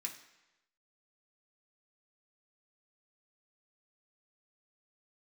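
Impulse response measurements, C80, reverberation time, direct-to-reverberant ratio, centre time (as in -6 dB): 12.0 dB, 1.0 s, 0.0 dB, 18 ms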